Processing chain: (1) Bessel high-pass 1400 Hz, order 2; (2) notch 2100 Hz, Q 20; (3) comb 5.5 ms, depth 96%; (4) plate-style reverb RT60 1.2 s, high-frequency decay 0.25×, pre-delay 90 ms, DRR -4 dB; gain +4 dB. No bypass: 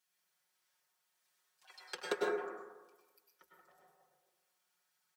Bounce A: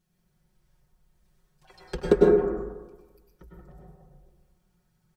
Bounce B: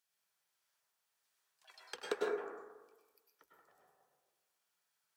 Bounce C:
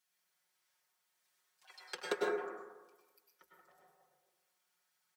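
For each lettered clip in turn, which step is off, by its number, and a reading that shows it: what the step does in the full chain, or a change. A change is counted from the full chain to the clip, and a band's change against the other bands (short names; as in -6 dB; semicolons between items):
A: 1, 2 kHz band -15.0 dB; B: 3, 500 Hz band +2.0 dB; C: 2, momentary loudness spread change +2 LU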